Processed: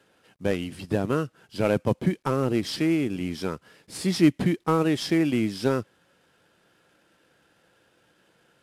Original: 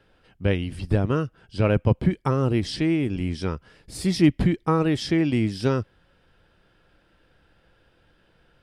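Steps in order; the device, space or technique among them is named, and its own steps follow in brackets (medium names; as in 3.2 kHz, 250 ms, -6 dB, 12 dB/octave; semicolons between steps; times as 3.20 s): early wireless headset (high-pass 170 Hz 12 dB/octave; CVSD coder 64 kbps)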